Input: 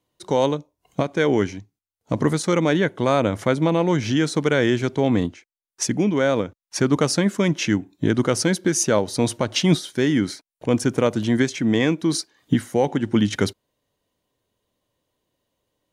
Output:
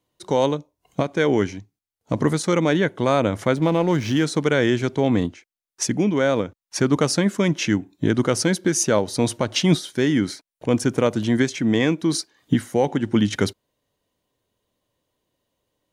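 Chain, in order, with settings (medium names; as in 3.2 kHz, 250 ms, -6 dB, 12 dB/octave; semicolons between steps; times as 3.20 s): 3.56–4.24 s: hysteresis with a dead band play -35.5 dBFS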